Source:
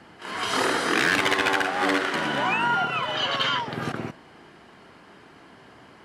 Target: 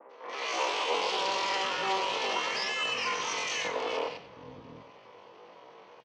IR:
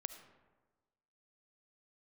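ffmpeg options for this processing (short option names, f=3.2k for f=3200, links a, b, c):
-filter_complex "[0:a]adynamicequalizer=threshold=0.0158:dfrequency=1400:dqfactor=0.9:tfrequency=1400:tqfactor=0.9:attack=5:release=100:ratio=0.375:range=2:mode=boostabove:tftype=bell,asoftclip=type=hard:threshold=-23.5dB,adynamicsmooth=sensitivity=5:basefreq=2k,aeval=exprs='val(0)*sin(2*PI*98*n/s)':c=same,asetrate=88200,aresample=44100,atempo=0.5,highpass=180,equalizer=f=480:t=q:w=4:g=10,equalizer=f=1k:t=q:w=4:g=8,equalizer=f=1.6k:t=q:w=4:g=-5,equalizer=f=3.7k:t=q:w=4:g=-6,lowpass=f=5.5k:w=0.5412,lowpass=f=5.5k:w=1.3066,acrossover=split=250|1800[a][b][c];[c]adelay=90[d];[a]adelay=720[e];[e][b][d]amix=inputs=3:normalize=0,asplit=2[f][g];[1:a]atrim=start_sample=2205,adelay=94[h];[g][h]afir=irnorm=-1:irlink=0,volume=-9dB[i];[f][i]amix=inputs=2:normalize=0"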